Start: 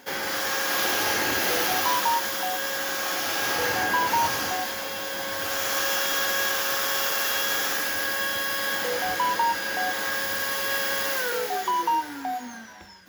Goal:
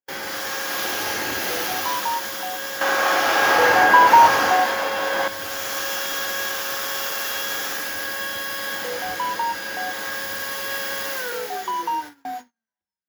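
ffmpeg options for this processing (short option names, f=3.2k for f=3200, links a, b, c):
-filter_complex "[0:a]agate=range=-48dB:threshold=-32dB:ratio=16:detection=peak,asettb=1/sr,asplit=3[a][b][c];[a]atrim=end=2.814[d];[b]atrim=start=2.81:end=5.28,asetpts=PTS-STARTPTS,afade=t=in:d=0.004:c=qsin,afade=t=out:st=2.466:d=0.004:c=qsin,equalizer=f=870:w=0.33:g=13.5[e];[c]atrim=start=5.276[f];[d][e]acrossfade=d=0.004:c1=hsin:c2=qsin[g];[g][f]acrossfade=d=0.004:c1=qsin:c2=hsin,volume=-1dB"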